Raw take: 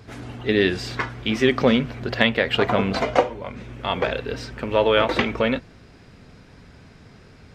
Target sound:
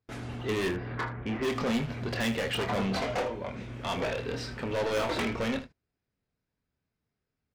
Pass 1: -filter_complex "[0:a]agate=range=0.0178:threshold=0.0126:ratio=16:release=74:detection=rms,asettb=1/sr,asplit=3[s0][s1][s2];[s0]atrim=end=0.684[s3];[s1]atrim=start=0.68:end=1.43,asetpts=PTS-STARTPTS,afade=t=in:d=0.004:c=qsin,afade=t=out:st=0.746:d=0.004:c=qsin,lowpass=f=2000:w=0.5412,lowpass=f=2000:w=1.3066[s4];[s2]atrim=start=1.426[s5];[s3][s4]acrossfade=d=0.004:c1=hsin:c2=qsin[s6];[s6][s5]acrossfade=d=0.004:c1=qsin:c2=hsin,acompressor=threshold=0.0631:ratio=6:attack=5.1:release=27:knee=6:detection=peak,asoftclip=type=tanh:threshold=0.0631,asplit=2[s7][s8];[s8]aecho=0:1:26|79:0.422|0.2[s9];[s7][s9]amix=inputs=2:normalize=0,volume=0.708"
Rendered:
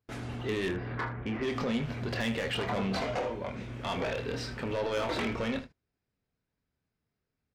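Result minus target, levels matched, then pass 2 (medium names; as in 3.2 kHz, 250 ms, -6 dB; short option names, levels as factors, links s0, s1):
compression: peak gain reduction +13 dB
-filter_complex "[0:a]agate=range=0.0178:threshold=0.0126:ratio=16:release=74:detection=rms,asettb=1/sr,asplit=3[s0][s1][s2];[s0]atrim=end=0.684[s3];[s1]atrim=start=0.68:end=1.43,asetpts=PTS-STARTPTS,afade=t=in:d=0.004:c=qsin,afade=t=out:st=0.746:d=0.004:c=qsin,lowpass=f=2000:w=0.5412,lowpass=f=2000:w=1.3066[s4];[s2]atrim=start=1.426[s5];[s3][s4]acrossfade=d=0.004:c1=hsin:c2=qsin[s6];[s6][s5]acrossfade=d=0.004:c1=qsin:c2=hsin,asoftclip=type=tanh:threshold=0.0631,asplit=2[s7][s8];[s8]aecho=0:1:26|79:0.422|0.2[s9];[s7][s9]amix=inputs=2:normalize=0,volume=0.708"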